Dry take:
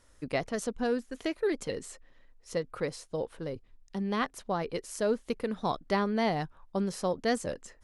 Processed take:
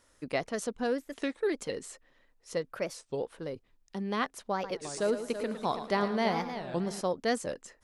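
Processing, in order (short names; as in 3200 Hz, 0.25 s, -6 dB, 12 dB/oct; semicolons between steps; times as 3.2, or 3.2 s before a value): low shelf 110 Hz -11.5 dB; 4.54–7.01 multi-head echo 0.11 s, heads first and third, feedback 44%, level -10.5 dB; record warp 33 1/3 rpm, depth 250 cents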